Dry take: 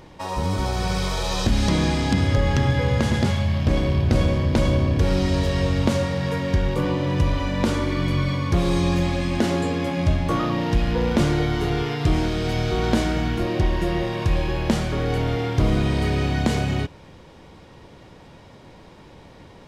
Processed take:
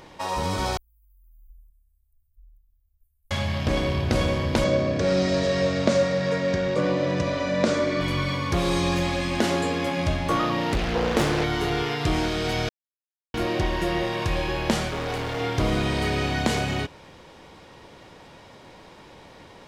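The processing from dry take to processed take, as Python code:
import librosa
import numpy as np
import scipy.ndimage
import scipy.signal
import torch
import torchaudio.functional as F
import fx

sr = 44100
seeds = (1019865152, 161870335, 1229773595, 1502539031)

y = fx.cheby2_bandstop(x, sr, low_hz=140.0, high_hz=5800.0, order=4, stop_db=80, at=(0.77, 3.31))
y = fx.cabinet(y, sr, low_hz=120.0, low_slope=12, high_hz=7600.0, hz=(180.0, 610.0, 880.0, 3000.0), db=(5, 9, -9, -6), at=(4.64, 8.01))
y = fx.doppler_dist(y, sr, depth_ms=0.93, at=(10.72, 11.44))
y = fx.clip_hard(y, sr, threshold_db=-24.0, at=(14.89, 15.41))
y = fx.edit(y, sr, fx.silence(start_s=12.69, length_s=0.65), tone=tone)
y = fx.low_shelf(y, sr, hz=310.0, db=-9.5)
y = y * 10.0 ** (2.5 / 20.0)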